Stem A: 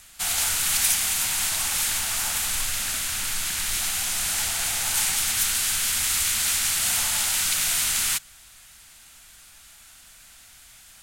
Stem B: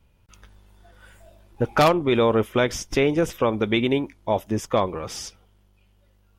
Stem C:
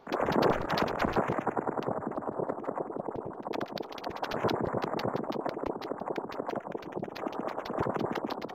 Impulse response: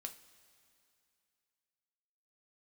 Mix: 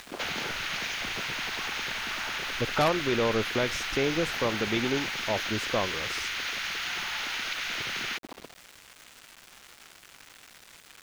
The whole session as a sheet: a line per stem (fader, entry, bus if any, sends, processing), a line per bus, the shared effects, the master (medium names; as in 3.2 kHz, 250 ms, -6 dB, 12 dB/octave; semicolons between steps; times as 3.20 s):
+1.5 dB, 0.00 s, bus A, no send, low-pass 2.3 kHz 12 dB/octave; tilt shelf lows -9.5 dB, about 730 Hz; upward compressor, threshold -41 dBFS
-7.5 dB, 1.00 s, no bus, no send, none
-9.0 dB, 0.00 s, bus A, no send, bass shelf 180 Hz +9.5 dB
bus A: 0.0 dB, brick-wall FIR low-pass 6.9 kHz; compression, threshold -30 dBFS, peak gain reduction 9.5 dB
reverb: none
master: small samples zeroed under -41 dBFS